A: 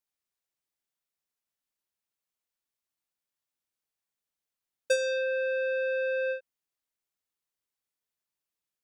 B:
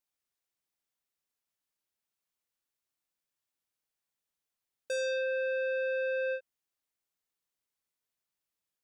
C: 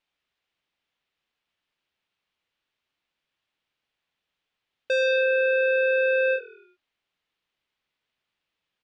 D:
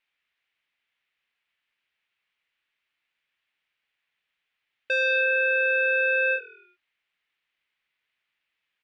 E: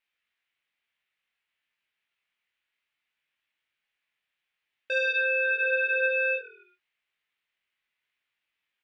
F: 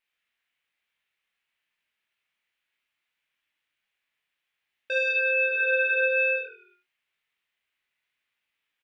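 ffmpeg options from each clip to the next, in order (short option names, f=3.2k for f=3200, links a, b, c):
-af "alimiter=level_in=4dB:limit=-24dB:level=0:latency=1:release=37,volume=-4dB"
-filter_complex "[0:a]lowpass=f=3.1k:t=q:w=1.7,asplit=5[a][b][c][d][e];[b]adelay=91,afreqshift=-40,volume=-21dB[f];[c]adelay=182,afreqshift=-80,volume=-26.4dB[g];[d]adelay=273,afreqshift=-120,volume=-31.7dB[h];[e]adelay=364,afreqshift=-160,volume=-37.1dB[i];[a][f][g][h][i]amix=inputs=5:normalize=0,volume=9dB"
-af "equalizer=f=2.1k:t=o:w=1.6:g=14,volume=-7.5dB"
-af "flanger=delay=19.5:depth=3.9:speed=0.56"
-af "aecho=1:1:36|75:0.376|0.473"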